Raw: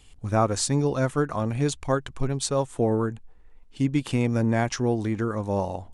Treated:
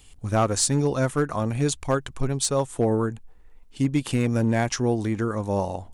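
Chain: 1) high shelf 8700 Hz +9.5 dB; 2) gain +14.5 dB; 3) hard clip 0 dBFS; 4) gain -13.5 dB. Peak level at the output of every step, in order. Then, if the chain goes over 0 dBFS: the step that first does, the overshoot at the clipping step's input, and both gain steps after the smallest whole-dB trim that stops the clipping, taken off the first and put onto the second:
-7.5, +7.0, 0.0, -13.5 dBFS; step 2, 7.0 dB; step 2 +7.5 dB, step 4 -6.5 dB

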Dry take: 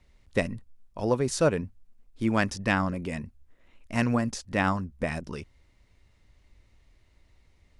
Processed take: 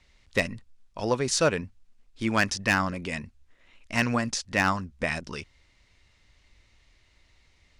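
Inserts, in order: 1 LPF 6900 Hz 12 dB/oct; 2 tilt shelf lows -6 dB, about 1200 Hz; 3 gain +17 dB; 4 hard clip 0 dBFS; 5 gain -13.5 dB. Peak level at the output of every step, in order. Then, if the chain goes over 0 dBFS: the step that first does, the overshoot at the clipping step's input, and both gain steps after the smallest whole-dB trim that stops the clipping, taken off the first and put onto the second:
-10.0, -7.5, +9.5, 0.0, -13.5 dBFS; step 3, 9.5 dB; step 3 +7 dB, step 5 -3.5 dB

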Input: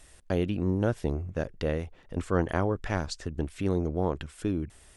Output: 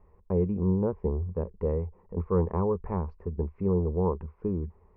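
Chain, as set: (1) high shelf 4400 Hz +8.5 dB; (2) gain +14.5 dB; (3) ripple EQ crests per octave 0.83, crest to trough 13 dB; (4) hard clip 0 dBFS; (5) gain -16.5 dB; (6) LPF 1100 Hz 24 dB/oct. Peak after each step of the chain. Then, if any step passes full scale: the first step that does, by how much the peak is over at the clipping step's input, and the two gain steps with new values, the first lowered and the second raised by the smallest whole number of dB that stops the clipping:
-11.0, +3.5, +4.5, 0.0, -16.5, -16.0 dBFS; step 2, 4.5 dB; step 2 +9.5 dB, step 5 -11.5 dB

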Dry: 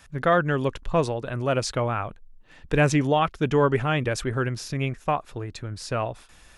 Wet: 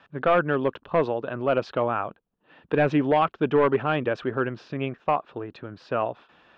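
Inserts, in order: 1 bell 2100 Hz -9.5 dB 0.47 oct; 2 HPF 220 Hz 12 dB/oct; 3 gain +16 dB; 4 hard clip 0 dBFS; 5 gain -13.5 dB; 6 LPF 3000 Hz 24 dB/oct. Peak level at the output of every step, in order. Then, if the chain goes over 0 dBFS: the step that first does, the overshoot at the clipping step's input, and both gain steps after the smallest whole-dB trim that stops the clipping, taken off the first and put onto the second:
-9.0, -7.0, +9.0, 0.0, -13.5, -12.5 dBFS; step 3, 9.0 dB; step 3 +7 dB, step 5 -4.5 dB

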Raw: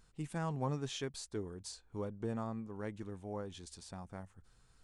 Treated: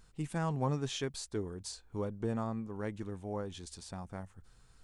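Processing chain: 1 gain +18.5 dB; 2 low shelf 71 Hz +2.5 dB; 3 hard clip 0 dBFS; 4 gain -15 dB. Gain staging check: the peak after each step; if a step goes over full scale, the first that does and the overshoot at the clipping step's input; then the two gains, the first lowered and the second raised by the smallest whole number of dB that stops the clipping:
-5.5, -5.0, -5.0, -20.0 dBFS; no overload

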